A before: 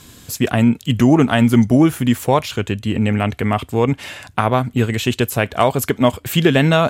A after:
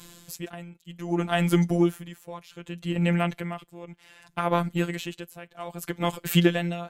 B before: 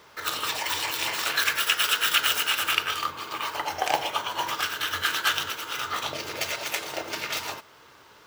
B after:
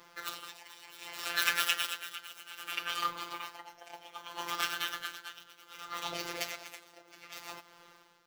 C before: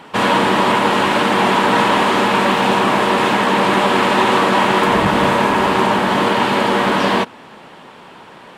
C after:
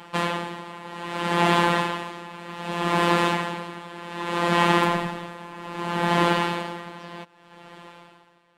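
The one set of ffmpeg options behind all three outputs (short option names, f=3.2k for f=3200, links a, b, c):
-af "afftfilt=real='hypot(re,im)*cos(PI*b)':imag='0':win_size=1024:overlap=0.75,aeval=exprs='val(0)*pow(10,-20*(0.5-0.5*cos(2*PI*0.64*n/s))/20)':c=same,volume=-1dB"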